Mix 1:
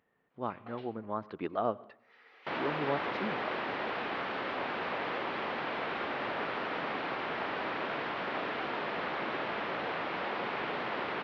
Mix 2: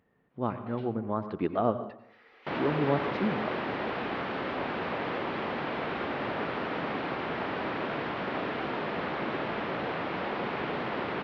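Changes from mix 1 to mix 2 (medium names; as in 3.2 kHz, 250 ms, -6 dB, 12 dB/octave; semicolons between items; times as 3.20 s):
speech: send +11.5 dB; master: add bass shelf 360 Hz +10.5 dB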